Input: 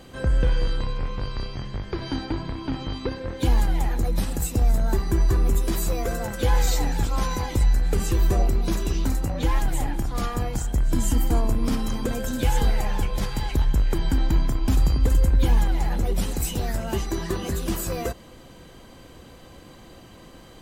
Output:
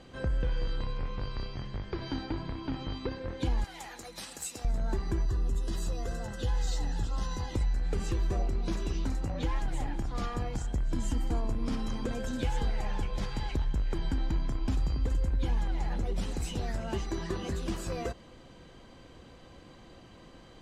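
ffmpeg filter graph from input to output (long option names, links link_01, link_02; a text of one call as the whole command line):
ffmpeg -i in.wav -filter_complex "[0:a]asettb=1/sr,asplit=3[link_01][link_02][link_03];[link_01]atrim=end=3.644[link_04];[link_02]atrim=start=3.64:end=4.65,asetpts=PTS-STARTPTS,afade=type=in:duration=0.004:curve=qsin,afade=type=out:start_time=1.006:duration=0.004:curve=qsin,highpass=frequency=1200:poles=1,aemphasis=mode=production:type=cd[link_05];[link_03]atrim=start=4.646[link_06];[link_04][link_05]acrossfade=duration=0.004:curve1=hsin:curve2=qsin[link_07];[link_07][link_06]acrossfade=duration=0.004:curve1=qsin:curve2=hsin,asettb=1/sr,asplit=3[link_08][link_09][link_10];[link_08]atrim=end=5.254[link_11];[link_09]atrim=start=5.25:end=7.54,asetpts=PTS-STARTPTS,afade=type=in:duration=0.004:curve=qsin,afade=type=out:start_time=2.286:duration=0.004:curve=qsin,asuperstop=centerf=2300:order=20:qfactor=6.9,acrossover=split=180|3000[link_12][link_13][link_14];[link_13]acompressor=threshold=-41dB:ratio=1.5:attack=3.2:release=140:knee=2.83:detection=peak[link_15];[link_12][link_15][link_14]amix=inputs=3:normalize=0[link_16];[link_10]atrim=start=7.536[link_17];[link_11][link_16]acrossfade=duration=0.004:curve1=hsin:curve2=qsin[link_18];[link_18][link_17]acrossfade=duration=0.004:curve1=qsin:curve2=hsin,lowpass=6200,acompressor=threshold=-22dB:ratio=2,volume=-6dB" out.wav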